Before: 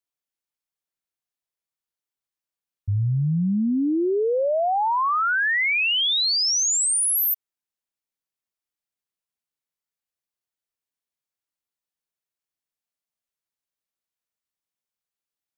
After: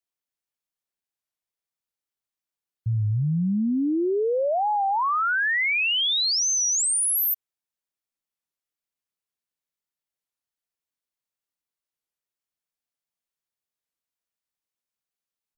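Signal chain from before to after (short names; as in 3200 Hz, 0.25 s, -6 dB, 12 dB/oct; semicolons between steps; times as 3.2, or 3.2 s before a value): record warp 33 1/3 rpm, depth 250 cents; gain -1.5 dB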